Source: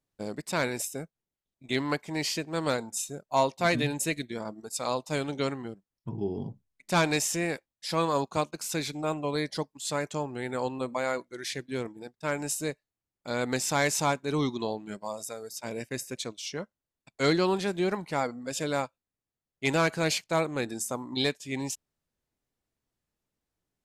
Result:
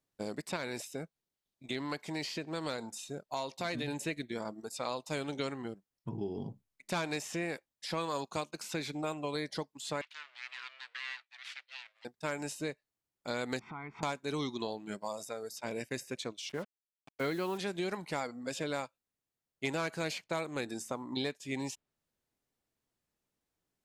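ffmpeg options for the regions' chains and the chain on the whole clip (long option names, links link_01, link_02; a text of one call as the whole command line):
ffmpeg -i in.wav -filter_complex "[0:a]asettb=1/sr,asplit=3[link_01][link_02][link_03];[link_01]atrim=end=0.564[link_04];[link_02]atrim=start=0.56:end=3.88,asetpts=PTS-STARTPTS,afade=type=in:duration=0.004:curve=qsin,afade=type=out:start_time=3.316:duration=0.004:curve=qsin,acompressor=threshold=-33dB:ratio=2:attack=3.2:release=140:knee=1:detection=peak,equalizer=frequency=4200:width=1.8:gain=4[link_05];[link_03]atrim=start=3.876[link_06];[link_04][link_05]acrossfade=duration=0.004:curve1=hsin:curve2=qsin[link_07];[link_07][link_06]acrossfade=duration=0.004:curve1=qsin:curve2=hsin,asettb=1/sr,asplit=3[link_08][link_09][link_10];[link_08]atrim=end=10.014[link_11];[link_09]atrim=start=10.01:end=12.05,asetpts=PTS-STARTPTS,afade=type=in:duration=0.004:curve=qsin,afade=type=out:start_time=2.036:duration=0.004:curve=qsin,aeval=exprs='abs(val(0))':channel_layout=same,asuperpass=centerf=2900:order=4:qfactor=1.1[link_12];[link_10]atrim=start=12.046[link_13];[link_11][link_12]acrossfade=duration=0.004:curve1=hsin:curve2=qsin[link_14];[link_14][link_13]acrossfade=duration=0.004:curve1=qsin:curve2=hsin,asettb=1/sr,asplit=3[link_15][link_16][link_17];[link_15]atrim=end=13.594[link_18];[link_16]atrim=start=13.59:end=14.03,asetpts=PTS-STARTPTS,afade=type=in:duration=0.004:curve=qsin,afade=type=out:start_time=0.436:duration=0.004:curve=qsin,lowpass=frequency=1900:width=0.5412,lowpass=frequency=1900:width=1.3066,aecho=1:1:0.9:0.91,atrim=end_sample=19404,acompressor=threshold=-41dB:ratio=5:attack=3.2:release=140:knee=1:detection=peak[link_19];[link_17]atrim=start=14.026[link_20];[link_18][link_19]acrossfade=duration=0.004:curve1=hsin:curve2=qsin[link_21];[link_21][link_20]acrossfade=duration=0.004:curve1=qsin:curve2=hsin,asettb=1/sr,asplit=3[link_22][link_23][link_24];[link_22]atrim=end=16.494[link_25];[link_23]atrim=start=16.49:end=17.58,asetpts=PTS-STARTPTS,afade=type=in:duration=0.004:curve=qsin,afade=type=out:start_time=1.086:duration=0.004:curve=qsin,lowpass=2100,acrusher=bits=7:mix=0:aa=0.5[link_26];[link_24]atrim=start=17.576[link_27];[link_25][link_26]acrossfade=duration=0.004:curve1=hsin:curve2=qsin[link_28];[link_28][link_27]acrossfade=duration=0.004:curve1=qsin:curve2=hsin,lowshelf=frequency=110:gain=-7,acrossover=split=2000|4100[link_29][link_30][link_31];[link_29]acompressor=threshold=-34dB:ratio=4[link_32];[link_30]acompressor=threshold=-44dB:ratio=4[link_33];[link_31]acompressor=threshold=-49dB:ratio=4[link_34];[link_32][link_33][link_34]amix=inputs=3:normalize=0" out.wav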